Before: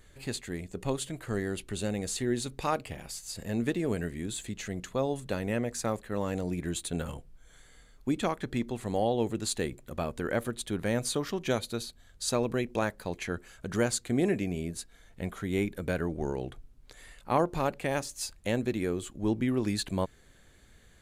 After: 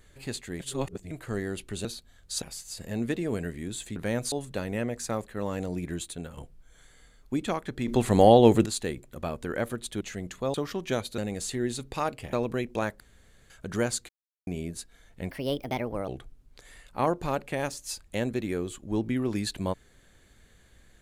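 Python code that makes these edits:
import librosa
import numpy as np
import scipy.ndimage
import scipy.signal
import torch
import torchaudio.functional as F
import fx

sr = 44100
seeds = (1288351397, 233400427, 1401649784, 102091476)

y = fx.edit(x, sr, fx.reverse_span(start_s=0.6, length_s=0.51),
    fx.swap(start_s=1.85, length_s=1.15, other_s=11.76, other_length_s=0.57),
    fx.swap(start_s=4.54, length_s=0.53, other_s=10.76, other_length_s=0.36),
    fx.fade_out_to(start_s=6.65, length_s=0.47, floor_db=-10.0),
    fx.clip_gain(start_s=8.63, length_s=0.78, db=11.5),
    fx.room_tone_fill(start_s=13.0, length_s=0.5),
    fx.silence(start_s=14.09, length_s=0.38),
    fx.speed_span(start_s=15.3, length_s=1.1, speed=1.41), tone=tone)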